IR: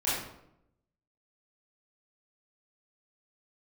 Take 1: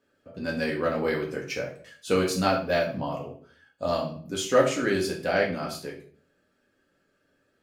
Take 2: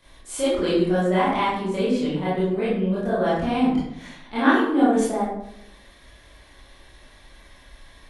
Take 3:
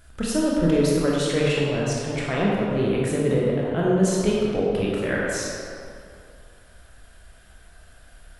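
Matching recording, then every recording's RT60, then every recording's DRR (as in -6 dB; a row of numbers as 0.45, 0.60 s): 2; 0.50, 0.80, 2.4 s; -3.0, -11.0, -5.0 dB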